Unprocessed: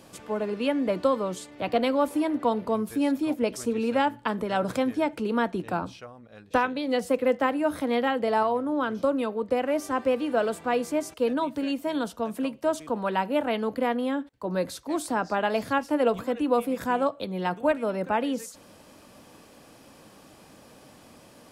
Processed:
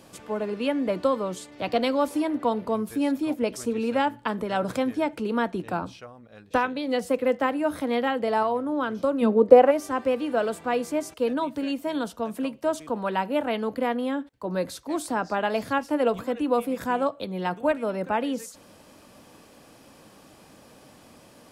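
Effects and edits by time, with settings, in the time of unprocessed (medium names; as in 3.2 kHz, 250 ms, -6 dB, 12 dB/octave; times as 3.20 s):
1.52–2.22 s: peaking EQ 5.3 kHz +6 dB 1.1 oct
9.21–9.70 s: peaking EQ 170 Hz -> 840 Hz +14 dB 2 oct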